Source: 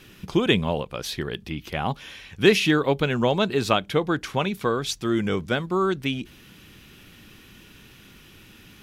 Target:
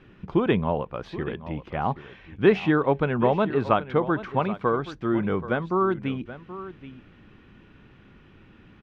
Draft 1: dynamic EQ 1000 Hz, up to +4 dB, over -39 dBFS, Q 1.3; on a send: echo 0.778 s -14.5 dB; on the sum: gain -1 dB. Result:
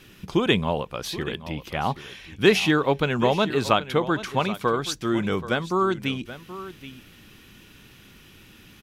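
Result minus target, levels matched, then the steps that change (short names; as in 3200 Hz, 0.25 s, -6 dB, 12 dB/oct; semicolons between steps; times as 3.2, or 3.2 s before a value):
2000 Hz band +3.5 dB
add after dynamic EQ: LPF 1600 Hz 12 dB/oct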